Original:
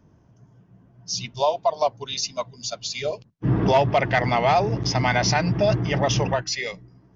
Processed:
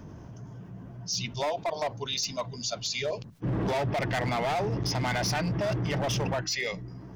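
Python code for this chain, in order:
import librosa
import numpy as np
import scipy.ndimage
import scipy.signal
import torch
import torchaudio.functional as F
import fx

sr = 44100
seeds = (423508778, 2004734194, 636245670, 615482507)

y = np.clip(x, -10.0 ** (-20.0 / 20.0), 10.0 ** (-20.0 / 20.0))
y = fx.env_flatten(y, sr, amount_pct=50)
y = F.gain(torch.from_numpy(y), -6.0).numpy()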